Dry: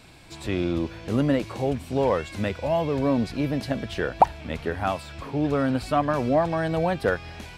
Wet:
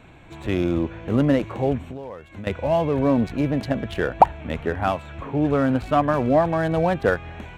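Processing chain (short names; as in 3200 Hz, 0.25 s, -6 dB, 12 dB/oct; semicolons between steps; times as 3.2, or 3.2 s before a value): Wiener smoothing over 9 samples; 1.85–2.47 compressor 6:1, threshold -37 dBFS, peak gain reduction 17.5 dB; gain +3.5 dB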